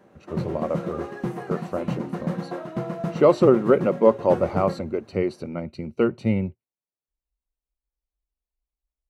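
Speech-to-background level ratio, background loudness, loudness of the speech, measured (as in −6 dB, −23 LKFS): 8.5 dB, −31.5 LKFS, −23.0 LKFS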